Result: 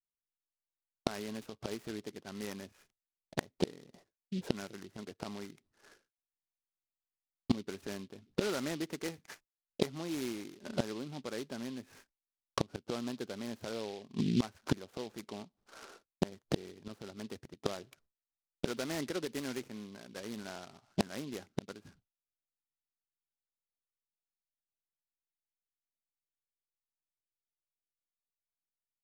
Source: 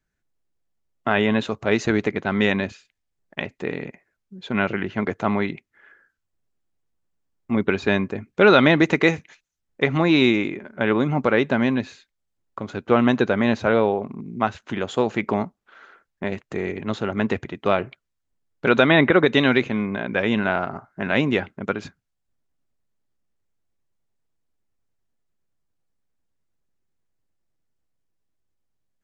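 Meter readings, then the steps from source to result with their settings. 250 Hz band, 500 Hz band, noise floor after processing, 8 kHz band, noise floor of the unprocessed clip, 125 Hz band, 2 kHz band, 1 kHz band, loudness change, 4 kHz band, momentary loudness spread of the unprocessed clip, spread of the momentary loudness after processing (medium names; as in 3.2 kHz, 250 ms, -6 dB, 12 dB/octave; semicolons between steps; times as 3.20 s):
-16.5 dB, -19.0 dB, under -85 dBFS, no reading, -78 dBFS, -15.0 dB, -24.5 dB, -20.5 dB, -18.0 dB, -14.5 dB, 15 LU, 13 LU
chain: expander -47 dBFS; level-controlled noise filter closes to 760 Hz, open at -13.5 dBFS; dynamic bell 320 Hz, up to +4 dB, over -27 dBFS, Q 0.86; inverted gate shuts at -20 dBFS, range -28 dB; delay time shaken by noise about 3.4 kHz, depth 0.083 ms; trim +4 dB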